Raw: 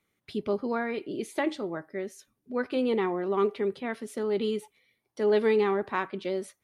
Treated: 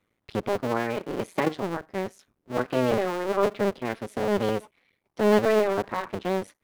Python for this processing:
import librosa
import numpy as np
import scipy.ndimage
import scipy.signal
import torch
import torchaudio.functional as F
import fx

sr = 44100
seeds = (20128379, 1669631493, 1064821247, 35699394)

y = fx.cycle_switch(x, sr, every=2, mode='muted')
y = fx.high_shelf(y, sr, hz=3100.0, db=-10.0)
y = y * 10.0 ** (6.5 / 20.0)